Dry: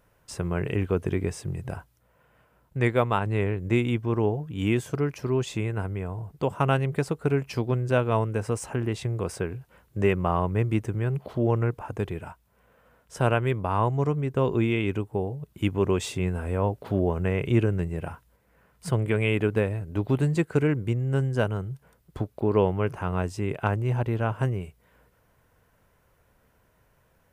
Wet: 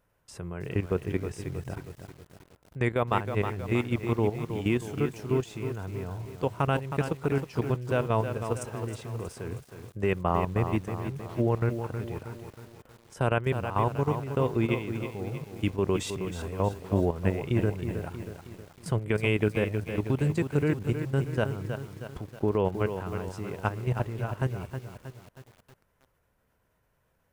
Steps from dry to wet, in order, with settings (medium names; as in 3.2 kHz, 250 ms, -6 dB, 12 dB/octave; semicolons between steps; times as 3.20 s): level held to a coarse grid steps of 12 dB; bit-crushed delay 317 ms, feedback 55%, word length 8-bit, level -8 dB